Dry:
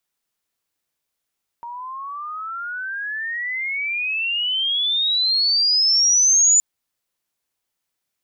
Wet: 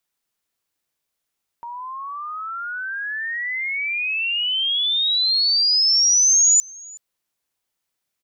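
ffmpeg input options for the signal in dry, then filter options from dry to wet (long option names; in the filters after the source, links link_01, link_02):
-f lavfi -i "aevalsrc='pow(10,(-11+19*(t/4.97-1))/20)*sin(2*PI*934*4.97/(35*log(2)/12)*(exp(35*log(2)/12*t/4.97)-1))':duration=4.97:sample_rate=44100"
-af "aecho=1:1:372:0.0631"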